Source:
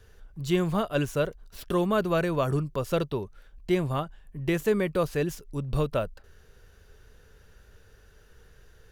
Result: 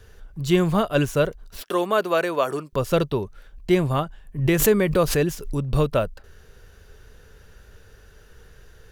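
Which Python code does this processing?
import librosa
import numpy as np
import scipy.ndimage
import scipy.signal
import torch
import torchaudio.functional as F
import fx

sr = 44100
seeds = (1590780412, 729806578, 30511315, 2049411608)

y = fx.highpass(x, sr, hz=400.0, slope=12, at=(1.62, 2.73))
y = fx.pre_swell(y, sr, db_per_s=76.0, at=(4.38, 5.6))
y = y * 10.0 ** (6.0 / 20.0)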